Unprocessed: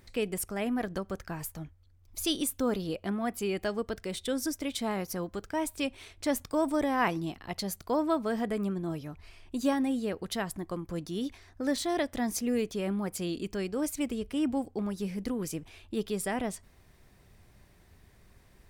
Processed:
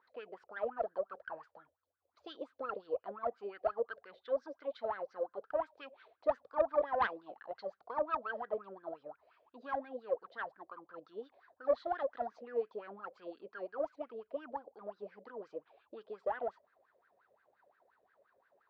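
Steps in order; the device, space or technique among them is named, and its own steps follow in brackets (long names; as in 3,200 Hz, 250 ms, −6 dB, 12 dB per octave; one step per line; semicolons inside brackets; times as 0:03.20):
wah-wah guitar rig (LFO wah 5.7 Hz 540–1,600 Hz, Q 12; tube saturation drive 30 dB, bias 0.55; loudspeaker in its box 81–4,400 Hz, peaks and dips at 100 Hz −8 dB, 170 Hz −7 dB, 470 Hz +7 dB, 2,200 Hz −5 dB, 4,200 Hz +5 dB)
level +10 dB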